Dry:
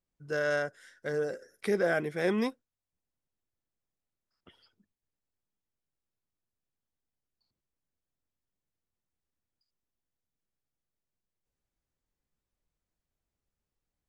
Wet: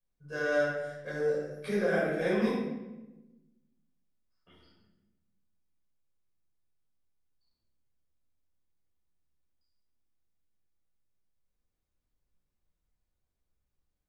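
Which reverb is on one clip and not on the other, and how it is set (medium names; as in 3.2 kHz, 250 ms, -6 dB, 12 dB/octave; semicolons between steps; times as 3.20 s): simulated room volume 490 m³, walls mixed, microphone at 5.5 m; trim -12.5 dB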